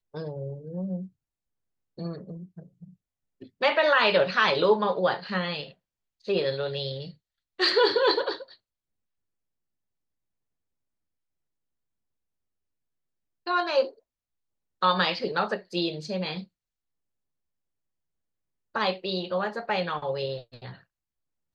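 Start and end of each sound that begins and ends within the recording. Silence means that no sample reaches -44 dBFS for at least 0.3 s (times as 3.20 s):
1.98–2.90 s
3.41–5.72 s
6.25–7.11 s
7.59–8.54 s
13.46–13.90 s
14.82–16.44 s
18.75–20.76 s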